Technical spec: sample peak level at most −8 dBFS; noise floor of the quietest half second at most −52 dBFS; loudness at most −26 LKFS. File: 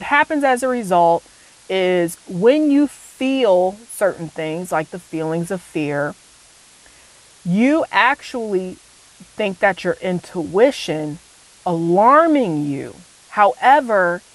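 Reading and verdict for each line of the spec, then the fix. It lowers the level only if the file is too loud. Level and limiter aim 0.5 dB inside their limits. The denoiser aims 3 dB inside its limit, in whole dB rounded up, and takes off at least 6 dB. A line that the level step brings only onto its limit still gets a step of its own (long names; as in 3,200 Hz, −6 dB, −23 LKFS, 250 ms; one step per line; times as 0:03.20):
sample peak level −1.5 dBFS: out of spec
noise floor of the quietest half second −48 dBFS: out of spec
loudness −18.0 LKFS: out of spec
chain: level −8.5 dB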